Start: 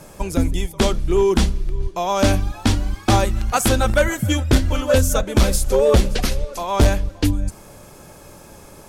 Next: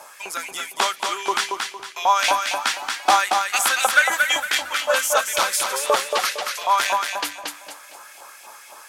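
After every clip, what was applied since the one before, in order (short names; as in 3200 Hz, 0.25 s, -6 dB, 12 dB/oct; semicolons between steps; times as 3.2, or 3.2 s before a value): LFO high-pass saw up 3.9 Hz 750–2700 Hz; thinning echo 0.229 s, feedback 34%, high-pass 150 Hz, level -4.5 dB; gain +1 dB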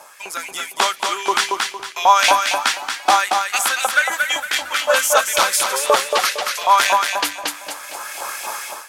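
in parallel at -11 dB: crossover distortion -43 dBFS; on the sum: AGC gain up to 16 dB; gain -1 dB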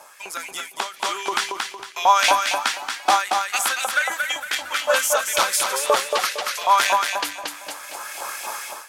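ending taper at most 140 dB/s; gain -3 dB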